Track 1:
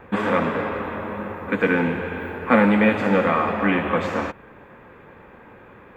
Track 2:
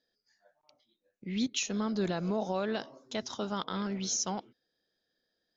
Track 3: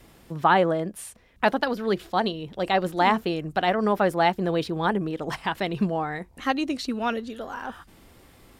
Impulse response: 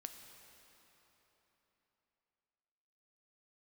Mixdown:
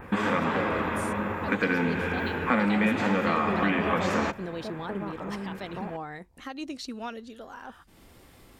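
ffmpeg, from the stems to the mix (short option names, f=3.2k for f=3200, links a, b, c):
-filter_complex "[0:a]equalizer=f=520:w=1.5:g=-4,acompressor=threshold=-27dB:ratio=3,volume=2.5dB[a];[1:a]lowpass=f=1.2k:w=0.5412,lowpass=f=1.2k:w=1.3066,adelay=1500,volume=-1.5dB[b];[2:a]alimiter=limit=-18.5dB:level=0:latency=1:release=137,volume=-8.5dB[c];[a][b][c]amix=inputs=3:normalize=0,adynamicequalizer=threshold=0.00282:dfrequency=6000:dqfactor=1:tfrequency=6000:tqfactor=1:attack=5:release=100:ratio=0.375:range=3.5:mode=boostabove:tftype=bell,acompressor=mode=upward:threshold=-44dB:ratio=2.5"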